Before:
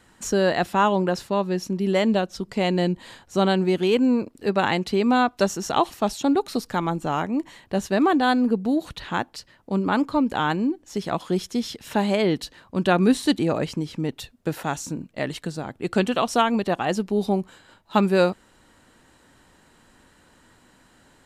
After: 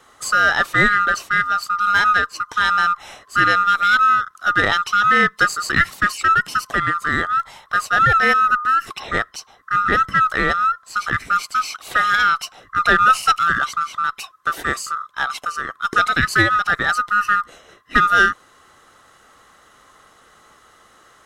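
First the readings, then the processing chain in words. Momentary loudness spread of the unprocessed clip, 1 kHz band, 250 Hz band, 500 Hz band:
10 LU, +9.5 dB, −10.0 dB, −7.0 dB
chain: neighbouring bands swapped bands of 1,000 Hz
in parallel at −7 dB: asymmetric clip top −23.5 dBFS
on the sum: level +2 dB

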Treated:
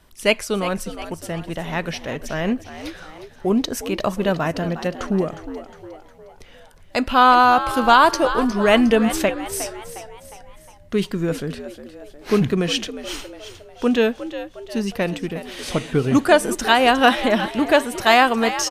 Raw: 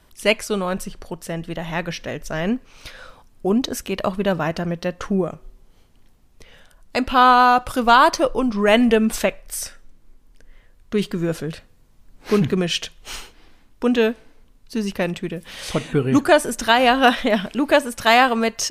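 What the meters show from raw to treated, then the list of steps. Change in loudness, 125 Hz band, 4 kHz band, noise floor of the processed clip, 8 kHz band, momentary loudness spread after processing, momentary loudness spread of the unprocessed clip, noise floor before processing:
0.0 dB, 0.0 dB, +0.5 dB, −46 dBFS, 0.0 dB, 18 LU, 16 LU, −54 dBFS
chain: echo with shifted repeats 359 ms, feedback 49%, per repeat +75 Hz, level −12.5 dB

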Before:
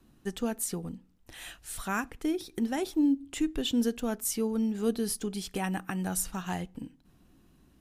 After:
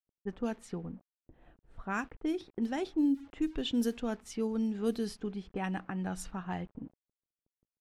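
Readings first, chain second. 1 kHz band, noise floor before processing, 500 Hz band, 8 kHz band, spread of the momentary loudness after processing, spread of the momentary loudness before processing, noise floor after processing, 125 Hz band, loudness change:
−3.0 dB, −63 dBFS, −3.0 dB, −15.0 dB, 12 LU, 15 LU, below −85 dBFS, −3.0 dB, −3.5 dB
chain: centre clipping without the shift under −51.5 dBFS
low-pass that shuts in the quiet parts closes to 340 Hz, open at −23.5 dBFS
level −3 dB

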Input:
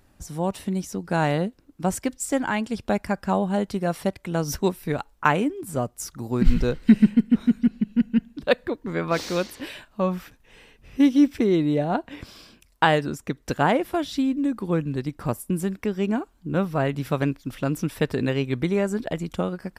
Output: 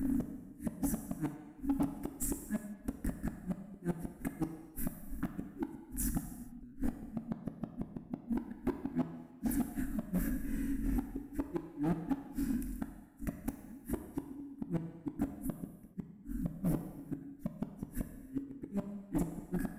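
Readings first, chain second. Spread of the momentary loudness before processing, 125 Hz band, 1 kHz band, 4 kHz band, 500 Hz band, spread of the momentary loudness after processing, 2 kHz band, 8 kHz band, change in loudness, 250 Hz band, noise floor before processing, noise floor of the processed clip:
10 LU, −13.5 dB, −23.0 dB, below −25 dB, −22.0 dB, 8 LU, −23.0 dB, −10.0 dB, −15.5 dB, −13.5 dB, −60 dBFS, −55 dBFS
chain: compressor on every frequency bin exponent 0.6
drawn EQ curve 120 Hz 0 dB, 180 Hz +4 dB, 280 Hz +14 dB, 440 Hz −20 dB, 950 Hz −23 dB, 1,700 Hz −8 dB, 3,300 Hz −25 dB, 8,000 Hz −7 dB, 11,000 Hz +3 dB
downward compressor 10 to 1, threshold −9 dBFS, peak gain reduction 11.5 dB
gate with flip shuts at −7 dBFS, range −35 dB
phase shifter 0.13 Hz, delay 2.7 ms, feedback 37%
gate with flip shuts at −13 dBFS, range −38 dB
hard clipping −23 dBFS, distortion −9 dB
reverb whose tail is shaped and stops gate 450 ms falling, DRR 6 dB
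level −5 dB

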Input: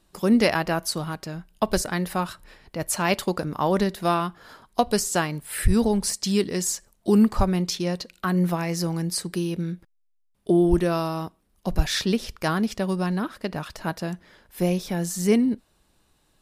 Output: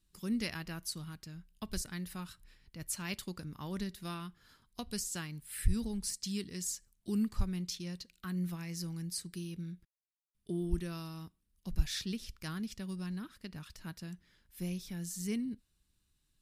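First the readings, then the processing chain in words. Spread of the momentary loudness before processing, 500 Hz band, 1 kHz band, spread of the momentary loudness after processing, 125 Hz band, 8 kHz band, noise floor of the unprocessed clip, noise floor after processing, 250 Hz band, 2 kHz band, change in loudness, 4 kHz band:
12 LU, −22.5 dB, −23.5 dB, 13 LU, −12.5 dB, −11.0 dB, −66 dBFS, −79 dBFS, −15.0 dB, −16.0 dB, −14.5 dB, −12.0 dB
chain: guitar amp tone stack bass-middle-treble 6-0-2
level +3.5 dB

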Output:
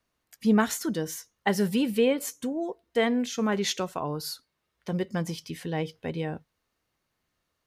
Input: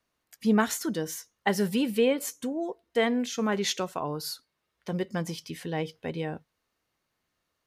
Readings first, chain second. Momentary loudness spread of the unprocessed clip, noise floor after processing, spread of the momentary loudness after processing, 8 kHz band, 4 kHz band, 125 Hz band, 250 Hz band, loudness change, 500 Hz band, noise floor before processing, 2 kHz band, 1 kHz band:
11 LU, −80 dBFS, 11 LU, 0.0 dB, 0.0 dB, +2.0 dB, +1.5 dB, +1.0 dB, +0.5 dB, −81 dBFS, 0.0 dB, 0.0 dB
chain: low-shelf EQ 150 Hz +5 dB

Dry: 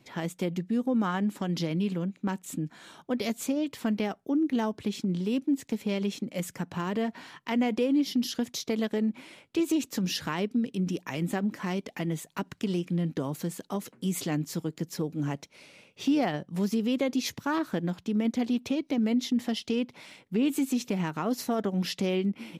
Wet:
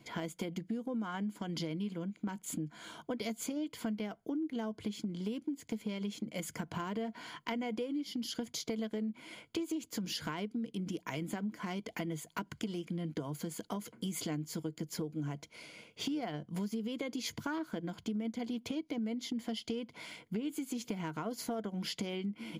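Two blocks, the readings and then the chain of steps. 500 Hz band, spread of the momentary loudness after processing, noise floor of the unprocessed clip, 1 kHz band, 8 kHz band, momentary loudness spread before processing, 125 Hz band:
−9.0 dB, 4 LU, −64 dBFS, −8.0 dB, −5.0 dB, 8 LU, −9.0 dB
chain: EQ curve with evenly spaced ripples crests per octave 1.8, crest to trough 8 dB
downward compressor 6 to 1, threshold −35 dBFS, peak gain reduction 15 dB

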